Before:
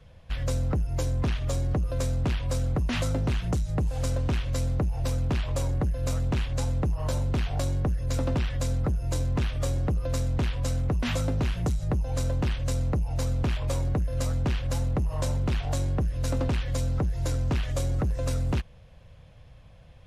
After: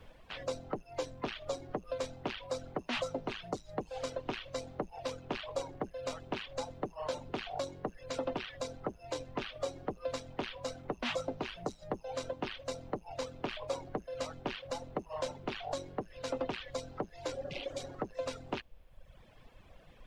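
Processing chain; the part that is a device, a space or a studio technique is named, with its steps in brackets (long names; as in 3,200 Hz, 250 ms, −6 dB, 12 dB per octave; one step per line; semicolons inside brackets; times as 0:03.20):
healed spectral selection 0:17.36–0:17.82, 210–2,000 Hz after
aircraft cabin announcement (band-pass filter 430–3,900 Hz; soft clipping −23 dBFS, distortion −21 dB; brown noise bed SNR 15 dB)
reverb reduction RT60 1.2 s
dynamic equaliser 1,700 Hz, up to −5 dB, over −54 dBFS, Q 1.1
level +2 dB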